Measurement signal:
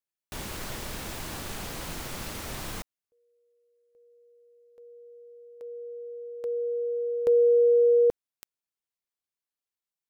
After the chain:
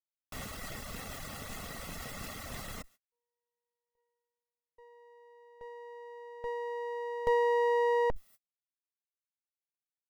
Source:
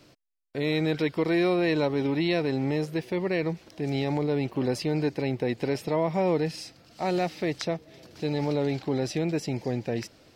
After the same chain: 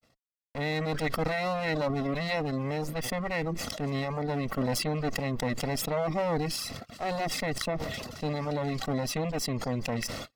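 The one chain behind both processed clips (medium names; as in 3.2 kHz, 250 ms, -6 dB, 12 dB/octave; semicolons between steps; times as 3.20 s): comb filter that takes the minimum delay 1.5 ms; small resonant body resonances 260/1100/1900 Hz, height 8 dB, ringing for 20 ms; reverb removal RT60 0.65 s; gate -56 dBFS, range -56 dB; decay stretcher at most 32 dB/s; trim -4.5 dB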